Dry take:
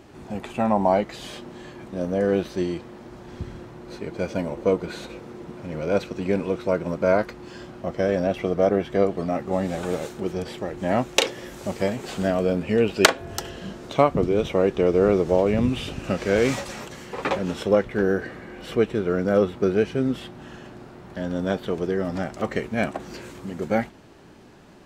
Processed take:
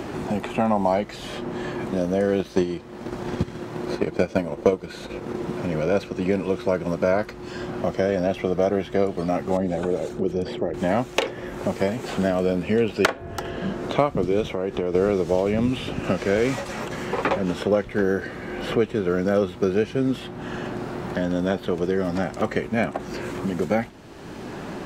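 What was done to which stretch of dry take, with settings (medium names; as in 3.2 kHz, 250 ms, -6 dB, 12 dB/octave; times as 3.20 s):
2.39–5.36 s: transient shaper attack +9 dB, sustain -4 dB
9.57–10.74 s: resonances exaggerated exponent 1.5
14.53–14.95 s: compression 5:1, threshold -25 dBFS
whole clip: three bands compressed up and down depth 70%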